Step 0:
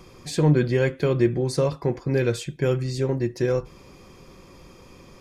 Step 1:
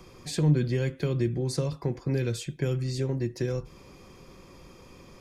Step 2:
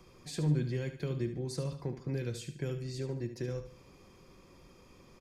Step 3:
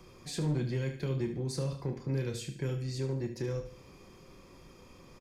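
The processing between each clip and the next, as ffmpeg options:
ffmpeg -i in.wav -filter_complex "[0:a]acrossover=split=270|3000[link_01][link_02][link_03];[link_02]acompressor=threshold=-30dB:ratio=6[link_04];[link_01][link_04][link_03]amix=inputs=3:normalize=0,volume=-2.5dB" out.wav
ffmpeg -i in.wav -af "aecho=1:1:73|146|219|292:0.316|0.114|0.041|0.0148,volume=-8dB" out.wav
ffmpeg -i in.wav -filter_complex "[0:a]asoftclip=type=hard:threshold=-23dB,asplit=2[link_01][link_02];[link_02]adelay=30,volume=-8dB[link_03];[link_01][link_03]amix=inputs=2:normalize=0,asplit=2[link_04][link_05];[link_05]asoftclip=type=tanh:threshold=-34.5dB,volume=-4dB[link_06];[link_04][link_06]amix=inputs=2:normalize=0,volume=-1.5dB" out.wav

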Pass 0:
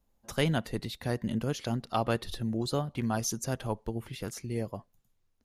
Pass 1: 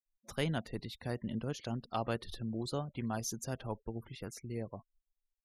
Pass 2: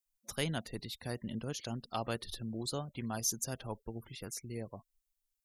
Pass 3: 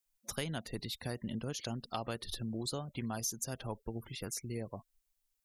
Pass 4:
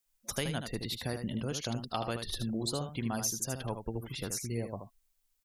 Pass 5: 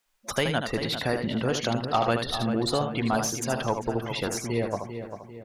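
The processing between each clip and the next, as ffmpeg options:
ffmpeg -i in.wav -af "afftfilt=real='re*gte(hypot(re,im),0.00447)':imag='im*gte(hypot(re,im),0.00447)':win_size=1024:overlap=0.75,volume=-6.5dB" out.wav
ffmpeg -i in.wav -af "highshelf=frequency=4000:gain=12,volume=-2dB" out.wav
ffmpeg -i in.wav -af "acompressor=threshold=-38dB:ratio=4,volume=3.5dB" out.wav
ffmpeg -i in.wav -af "aecho=1:1:77:0.422,volume=3.5dB" out.wav
ffmpeg -i in.wav -filter_complex "[0:a]asplit=2[link_01][link_02];[link_02]highpass=frequency=720:poles=1,volume=13dB,asoftclip=type=tanh:threshold=-16.5dB[link_03];[link_01][link_03]amix=inputs=2:normalize=0,lowpass=frequency=1600:poles=1,volume=-6dB,asplit=2[link_04][link_05];[link_05]adelay=395,lowpass=frequency=2600:poles=1,volume=-9dB,asplit=2[link_06][link_07];[link_07]adelay=395,lowpass=frequency=2600:poles=1,volume=0.46,asplit=2[link_08][link_09];[link_09]adelay=395,lowpass=frequency=2600:poles=1,volume=0.46,asplit=2[link_10][link_11];[link_11]adelay=395,lowpass=frequency=2600:poles=1,volume=0.46,asplit=2[link_12][link_13];[link_13]adelay=395,lowpass=frequency=2600:poles=1,volume=0.46[link_14];[link_04][link_06][link_08][link_10][link_12][link_14]amix=inputs=6:normalize=0,volume=8dB" out.wav

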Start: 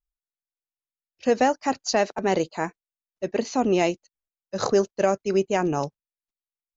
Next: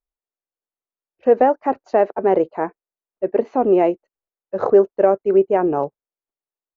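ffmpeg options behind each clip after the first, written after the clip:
ffmpeg -i in.wav -af "firequalizer=gain_entry='entry(160,0);entry(390,12);entry(4900,-24)':delay=0.05:min_phase=1,volume=-3.5dB" out.wav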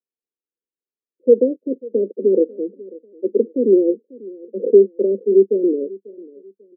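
ffmpeg -i in.wav -af "asuperpass=centerf=320:order=20:qfactor=0.98,aecho=1:1:543|1086:0.0891|0.0276,volume=2.5dB" out.wav

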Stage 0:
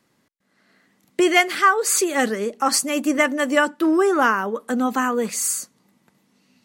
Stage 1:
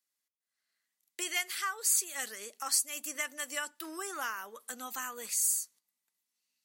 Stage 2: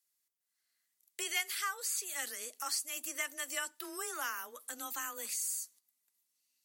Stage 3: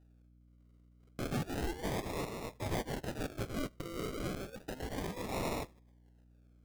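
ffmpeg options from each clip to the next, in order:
ffmpeg -i in.wav -af "agate=range=-13dB:threshold=-49dB:ratio=16:detection=peak,aderivative,acompressor=threshold=-38dB:ratio=1.5" out.wav
ffmpeg -i in.wav -filter_complex "[0:a]aemphasis=mode=production:type=cd,acrossover=split=4400[link_01][link_02];[link_02]acompressor=threshold=-34dB:ratio=4:attack=1:release=60[link_03];[link_01][link_03]amix=inputs=2:normalize=0,afreqshift=19,volume=-2.5dB" out.wav
ffmpeg -i in.wav -af "acrusher=samples=40:mix=1:aa=0.000001:lfo=1:lforange=24:lforate=0.32,asoftclip=type=tanh:threshold=-30dB,aeval=exprs='val(0)+0.000631*(sin(2*PI*60*n/s)+sin(2*PI*2*60*n/s)/2+sin(2*PI*3*60*n/s)/3+sin(2*PI*4*60*n/s)/4+sin(2*PI*5*60*n/s)/5)':channel_layout=same,volume=2.5dB" out.wav

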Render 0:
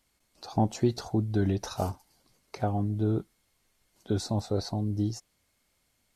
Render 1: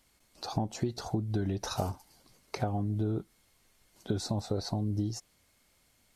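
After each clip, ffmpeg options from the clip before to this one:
ffmpeg -i in.wav -af "acompressor=threshold=-32dB:ratio=12,volume=4.5dB" out.wav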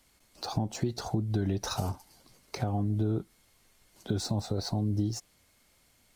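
ffmpeg -i in.wav -filter_complex "[0:a]acrossover=split=240|3100[link_01][link_02][link_03];[link_02]alimiter=level_in=5.5dB:limit=-24dB:level=0:latency=1:release=39,volume=-5.5dB[link_04];[link_03]acrusher=bits=4:mode=log:mix=0:aa=0.000001[link_05];[link_01][link_04][link_05]amix=inputs=3:normalize=0,volume=2.5dB" out.wav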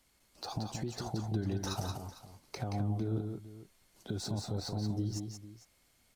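ffmpeg -i in.wav -filter_complex "[0:a]alimiter=limit=-20dB:level=0:latency=1:release=150,asplit=2[link_01][link_02];[link_02]aecho=0:1:176|451:0.531|0.158[link_03];[link_01][link_03]amix=inputs=2:normalize=0,volume=-5dB" out.wav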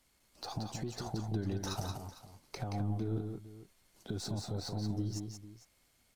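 ffmpeg -i in.wav -af "aeval=exprs='if(lt(val(0),0),0.708*val(0),val(0))':channel_layout=same" out.wav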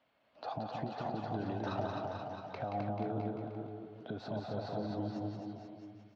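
ffmpeg -i in.wav -af "highpass=180,equalizer=frequency=190:width_type=q:width=4:gain=-5,equalizer=frequency=360:width_type=q:width=4:gain=-8,equalizer=frequency=630:width_type=q:width=4:gain=9,equalizer=frequency=2100:width_type=q:width=4:gain=-5,lowpass=frequency=3000:width=0.5412,lowpass=frequency=3000:width=1.3066,aecho=1:1:260|481|668.8|828.5|964.2:0.631|0.398|0.251|0.158|0.1,volume=2.5dB" out.wav

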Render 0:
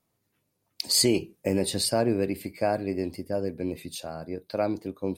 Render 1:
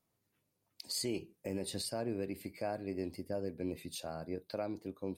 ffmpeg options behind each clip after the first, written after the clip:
ffmpeg -i in.wav -af "alimiter=limit=-21.5dB:level=0:latency=1:release=482,volume=-5.5dB" out.wav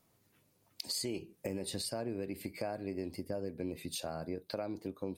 ffmpeg -i in.wav -af "acompressor=threshold=-48dB:ratio=3,volume=10dB" out.wav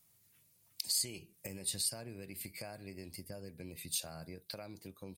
ffmpeg -i in.wav -af "firequalizer=gain_entry='entry(160,0);entry(260,-9);entry(2100,2);entry(9300,11)':delay=0.05:min_phase=1,volume=-3dB" out.wav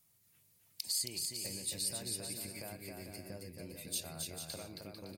ffmpeg -i in.wav -af "aecho=1:1:270|445.5|559.6|633.7|681.9:0.631|0.398|0.251|0.158|0.1,volume=-2dB" out.wav

